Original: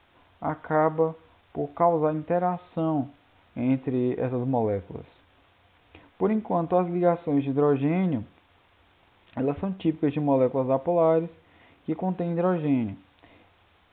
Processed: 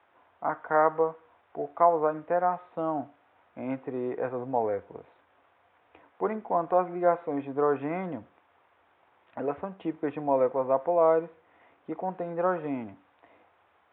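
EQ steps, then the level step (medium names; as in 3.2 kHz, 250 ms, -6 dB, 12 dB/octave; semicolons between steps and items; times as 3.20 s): high-pass 86 Hz; dynamic bell 1.5 kHz, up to +5 dB, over -39 dBFS, Q 1.2; three-band isolator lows -14 dB, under 400 Hz, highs -17 dB, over 2 kHz; 0.0 dB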